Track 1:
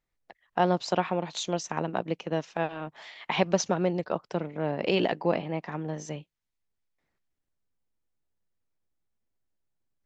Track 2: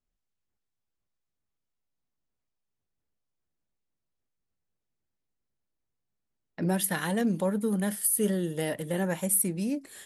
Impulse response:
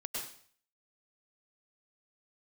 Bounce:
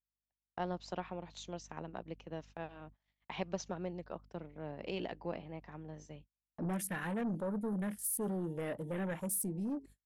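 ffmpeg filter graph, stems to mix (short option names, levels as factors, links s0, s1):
-filter_complex "[0:a]aeval=exprs='val(0)+0.00398*(sin(2*PI*50*n/s)+sin(2*PI*2*50*n/s)/2+sin(2*PI*3*50*n/s)/3+sin(2*PI*4*50*n/s)/4+sin(2*PI*5*50*n/s)/5)':c=same,aeval=exprs='0.355*(cos(1*acos(clip(val(0)/0.355,-1,1)))-cos(1*PI/2))+0.02*(cos(3*acos(clip(val(0)/0.355,-1,1)))-cos(3*PI/2))':c=same,lowshelf=f=170:g=4.5,volume=0.2[s0];[1:a]asoftclip=type=tanh:threshold=0.0422,afwtdn=0.00794,volume=0.596,asplit=2[s1][s2];[s2]apad=whole_len=443628[s3];[s0][s3]sidechaincompress=threshold=0.002:ratio=8:attack=16:release=104[s4];[s4][s1]amix=inputs=2:normalize=0,agate=range=0.01:threshold=0.002:ratio=16:detection=peak"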